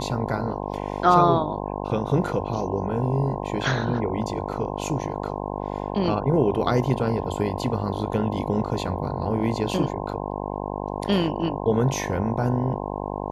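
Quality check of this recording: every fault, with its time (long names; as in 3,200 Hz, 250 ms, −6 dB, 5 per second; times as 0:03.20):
mains buzz 50 Hz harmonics 21 −30 dBFS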